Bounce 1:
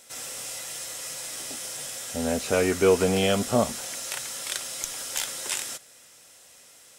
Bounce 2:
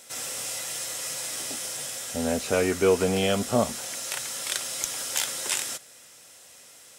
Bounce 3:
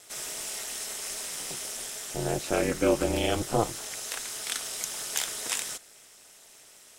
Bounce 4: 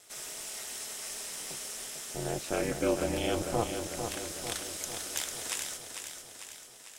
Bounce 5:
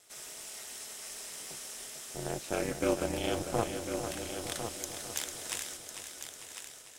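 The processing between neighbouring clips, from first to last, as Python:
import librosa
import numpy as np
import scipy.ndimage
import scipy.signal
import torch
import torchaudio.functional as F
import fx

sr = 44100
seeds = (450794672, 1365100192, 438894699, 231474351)

y1 = fx.rider(x, sr, range_db=3, speed_s=2.0)
y1 = scipy.signal.sosfilt(scipy.signal.butter(2, 49.0, 'highpass', fs=sr, output='sos'), y1)
y2 = y1 * np.sin(2.0 * np.pi * 110.0 * np.arange(len(y1)) / sr)
y3 = fx.echo_feedback(y2, sr, ms=448, feedback_pct=58, wet_db=-7)
y3 = y3 * librosa.db_to_amplitude(-5.0)
y4 = fx.cheby_harmonics(y3, sr, harmonics=(7,), levels_db=(-25,), full_scale_db=-12.5)
y4 = y4 + 10.0 ** (-8.5 / 20.0) * np.pad(y4, (int(1051 * sr / 1000.0), 0))[:len(y4)]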